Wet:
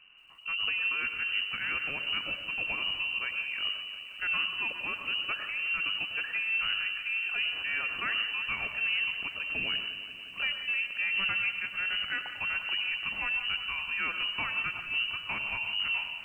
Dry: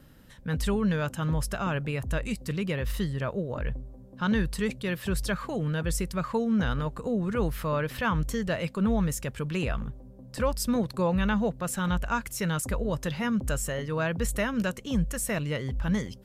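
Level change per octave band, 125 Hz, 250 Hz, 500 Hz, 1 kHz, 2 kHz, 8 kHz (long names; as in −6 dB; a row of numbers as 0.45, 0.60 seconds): −26.0 dB, −25.5 dB, −21.5 dB, −7.0 dB, +6.5 dB, below −30 dB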